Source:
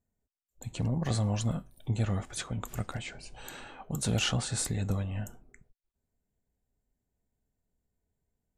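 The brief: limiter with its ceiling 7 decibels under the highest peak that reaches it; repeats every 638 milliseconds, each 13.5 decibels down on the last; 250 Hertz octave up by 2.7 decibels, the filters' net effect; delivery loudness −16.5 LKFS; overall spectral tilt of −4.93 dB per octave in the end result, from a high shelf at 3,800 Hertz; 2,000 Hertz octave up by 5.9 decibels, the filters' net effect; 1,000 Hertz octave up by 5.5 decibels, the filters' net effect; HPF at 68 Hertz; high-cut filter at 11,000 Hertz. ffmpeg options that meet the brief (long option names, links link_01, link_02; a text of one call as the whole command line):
ffmpeg -i in.wav -af "highpass=68,lowpass=11000,equalizer=frequency=250:width_type=o:gain=3.5,equalizer=frequency=1000:width_type=o:gain=5.5,equalizer=frequency=2000:width_type=o:gain=7.5,highshelf=frequency=3800:gain=-3.5,alimiter=limit=-22dB:level=0:latency=1,aecho=1:1:638|1276:0.211|0.0444,volume=17.5dB" out.wav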